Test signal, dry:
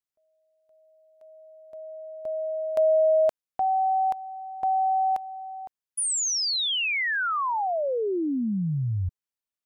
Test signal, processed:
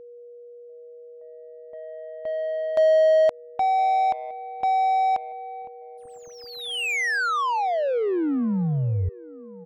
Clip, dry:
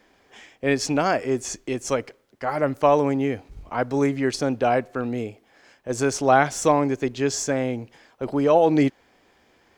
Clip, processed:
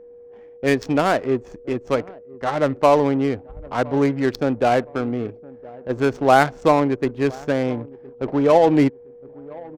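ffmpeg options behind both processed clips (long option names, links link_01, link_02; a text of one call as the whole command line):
ffmpeg -i in.wav -filter_complex "[0:a]asplit=2[link_01][link_02];[link_02]adelay=1014,lowpass=frequency=2000:poles=1,volume=-21dB,asplit=2[link_03][link_04];[link_04]adelay=1014,lowpass=frequency=2000:poles=1,volume=0.38,asplit=2[link_05][link_06];[link_06]adelay=1014,lowpass=frequency=2000:poles=1,volume=0.38[link_07];[link_01][link_03][link_05][link_07]amix=inputs=4:normalize=0,adynamicsmooth=sensitivity=2.5:basefreq=570,aeval=exprs='val(0)+0.00631*sin(2*PI*480*n/s)':channel_layout=same,volume=3dB" out.wav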